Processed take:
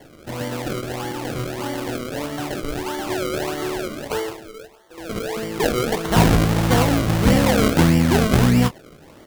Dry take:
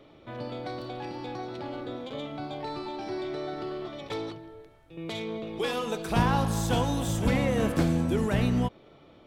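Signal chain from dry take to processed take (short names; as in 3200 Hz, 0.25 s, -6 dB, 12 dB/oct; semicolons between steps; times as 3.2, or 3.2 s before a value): 4.1–5.37 steep high-pass 340 Hz 96 dB/oct; decimation with a swept rate 34×, swing 100% 1.6 Hz; doubler 25 ms -11.5 dB; gain +9 dB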